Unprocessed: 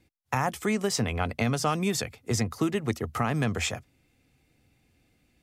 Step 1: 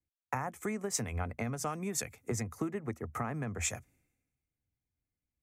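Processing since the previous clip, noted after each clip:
flat-topped bell 3,800 Hz −11 dB 1.1 octaves
downward compressor 5 to 1, threshold −37 dBFS, peak gain reduction 14.5 dB
multiband upward and downward expander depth 100%
level +2.5 dB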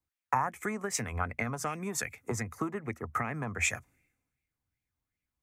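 auto-filter bell 2.6 Hz 950–2,400 Hz +12 dB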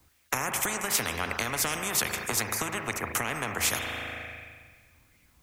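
spring reverb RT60 1.5 s, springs 37 ms, chirp 75 ms, DRR 11.5 dB
every bin compressed towards the loudest bin 4 to 1
level +2.5 dB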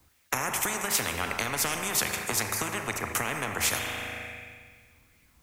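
four-comb reverb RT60 1.5 s, combs from 28 ms, DRR 10.5 dB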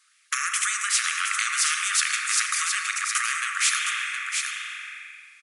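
sine wavefolder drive 6 dB, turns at −9.5 dBFS
linear-phase brick-wall band-pass 1,100–11,000 Hz
single-tap delay 715 ms −5.5 dB
level −3.5 dB

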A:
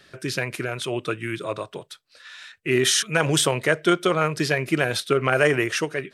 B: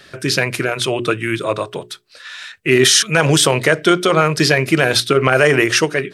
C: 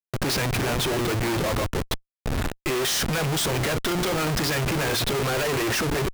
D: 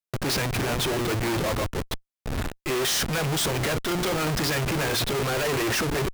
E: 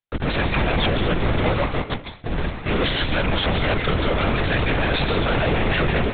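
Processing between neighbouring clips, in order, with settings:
mains-hum notches 60/120/180/240/300/360/420 Hz; dynamic equaliser 4,900 Hz, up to +4 dB, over −41 dBFS, Q 1.9; boost into a limiter +10.5 dB; level −1 dB
comparator with hysteresis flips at −26 dBFS; level −8 dB
brickwall limiter −24 dBFS, peak gain reduction 5.5 dB
on a send at −4 dB: convolution reverb RT60 0.50 s, pre-delay 135 ms; on the sum: linear-prediction vocoder at 8 kHz whisper; level +5 dB

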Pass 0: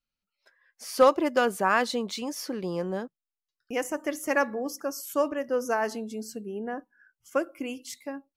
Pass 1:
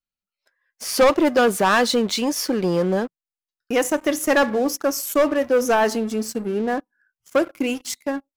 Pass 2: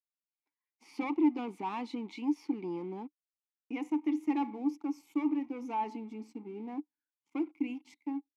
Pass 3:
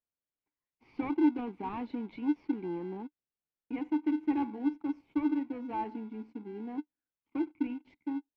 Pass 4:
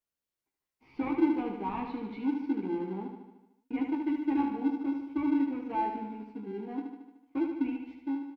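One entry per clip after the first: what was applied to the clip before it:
leveller curve on the samples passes 3
formant filter u; level −4 dB
in parallel at −10 dB: sample-rate reduction 1,200 Hz, jitter 0%; on the sum: high-frequency loss of the air 380 metres
double-tracking delay 15 ms −3 dB; on a send: repeating echo 75 ms, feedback 60%, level −6 dB

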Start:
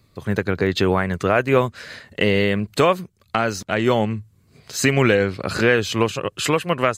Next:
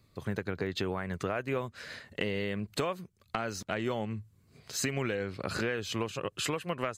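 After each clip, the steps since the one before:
downward compressor 4 to 1, threshold −23 dBFS, peak gain reduction 10.5 dB
level −7 dB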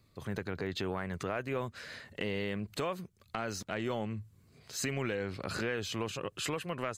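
transient designer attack −3 dB, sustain +4 dB
level −2 dB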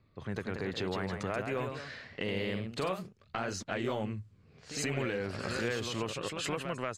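delay with pitch and tempo change per echo 200 ms, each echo +1 semitone, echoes 2, each echo −6 dB
low-pass that shuts in the quiet parts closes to 2,600 Hz, open at −29.5 dBFS

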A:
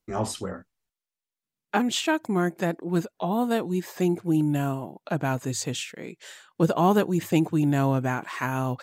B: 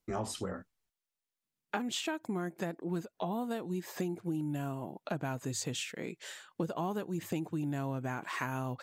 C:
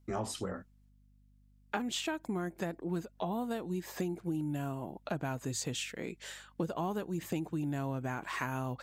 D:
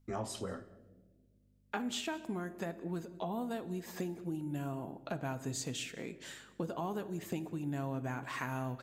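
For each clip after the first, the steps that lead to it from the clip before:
downward compressor 6 to 1, threshold −31 dBFS, peak gain reduction 15 dB; level −1.5 dB
mains hum 50 Hz, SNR 27 dB
single-tap delay 189 ms −22 dB; on a send at −11 dB: convolution reverb, pre-delay 4 ms; on the sum: level −3 dB

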